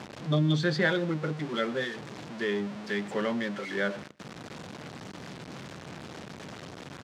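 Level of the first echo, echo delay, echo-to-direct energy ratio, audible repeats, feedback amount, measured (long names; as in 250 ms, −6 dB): −23.0 dB, 123 ms, −23.0 dB, 1, repeats not evenly spaced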